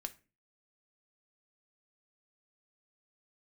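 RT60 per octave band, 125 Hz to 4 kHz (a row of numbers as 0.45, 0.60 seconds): 0.50, 0.50, 0.40, 0.30, 0.35, 0.25 seconds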